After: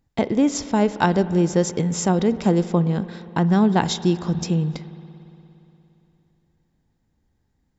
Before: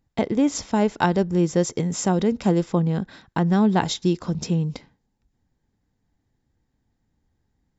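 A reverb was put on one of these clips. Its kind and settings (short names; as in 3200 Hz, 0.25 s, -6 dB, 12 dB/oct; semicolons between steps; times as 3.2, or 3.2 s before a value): spring tank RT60 3.2 s, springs 58 ms, chirp 50 ms, DRR 14 dB; gain +1.5 dB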